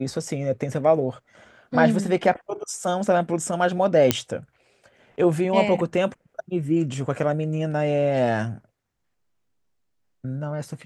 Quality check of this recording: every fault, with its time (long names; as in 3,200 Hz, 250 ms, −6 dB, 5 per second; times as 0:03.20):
0:04.11: click −2 dBFS